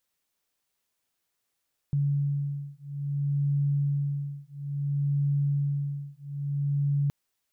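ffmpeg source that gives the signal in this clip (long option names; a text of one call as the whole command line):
ffmpeg -f lavfi -i "aevalsrc='0.0398*(sin(2*PI*142*t)+sin(2*PI*142.59*t))':duration=5.17:sample_rate=44100" out.wav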